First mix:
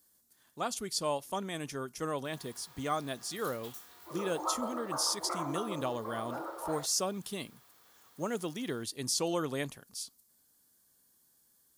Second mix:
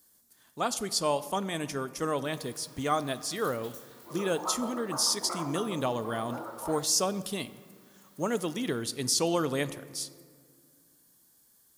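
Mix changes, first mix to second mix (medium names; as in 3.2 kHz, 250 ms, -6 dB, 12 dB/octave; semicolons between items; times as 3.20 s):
speech +3.5 dB; reverb: on, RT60 2.1 s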